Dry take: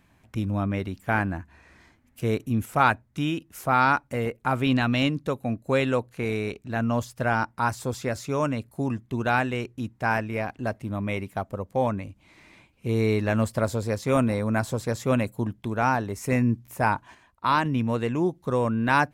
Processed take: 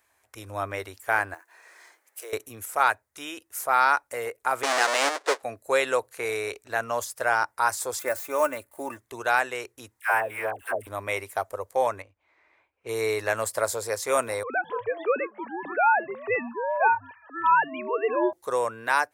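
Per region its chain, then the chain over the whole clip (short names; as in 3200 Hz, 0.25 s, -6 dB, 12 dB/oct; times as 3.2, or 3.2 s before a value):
1.34–2.33 block floating point 7-bit + steep high-pass 310 Hz 48 dB/oct + compressor 2:1, threshold -48 dBFS
4.63–5.43 half-waves squared off + HPF 310 Hz 24 dB/oct + air absorption 100 m
7.99–8.99 switching dead time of 0.053 ms + bell 5100 Hz -10.5 dB 1.1 oct + comb 3.4 ms, depth 58%
10–10.87 G.711 law mismatch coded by A + band shelf 5300 Hz -15 dB 1 oct + dispersion lows, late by 0.124 s, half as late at 660 Hz
12.02–13.17 low-pass opened by the level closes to 1800 Hz, open at -23.5 dBFS + upward expander, over -41 dBFS
14.43–18.33 sine-wave speech + echoes that change speed 0.106 s, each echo -7 st, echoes 2, each echo -6 dB
whole clip: EQ curve 100 Hz 0 dB, 160 Hz -22 dB, 430 Hz +5 dB, 1900 Hz +2 dB, 2800 Hz -5 dB, 9500 Hz +2 dB, 14000 Hz -2 dB; AGC gain up to 9 dB; tilt +3.5 dB/oct; gain -7.5 dB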